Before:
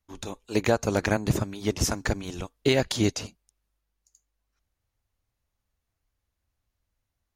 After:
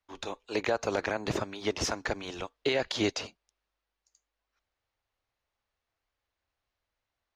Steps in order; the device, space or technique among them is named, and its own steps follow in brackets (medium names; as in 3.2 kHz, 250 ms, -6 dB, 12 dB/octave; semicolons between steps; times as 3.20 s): DJ mixer with the lows and highs turned down (three-band isolator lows -14 dB, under 370 Hz, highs -21 dB, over 5.4 kHz; peak limiter -20 dBFS, peak gain reduction 9.5 dB); trim +2.5 dB